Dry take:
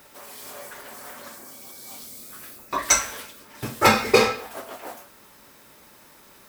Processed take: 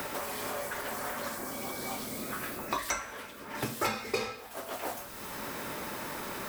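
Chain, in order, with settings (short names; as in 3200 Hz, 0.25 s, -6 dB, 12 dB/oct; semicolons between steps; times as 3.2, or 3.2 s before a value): three-band squash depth 100%; gain -3 dB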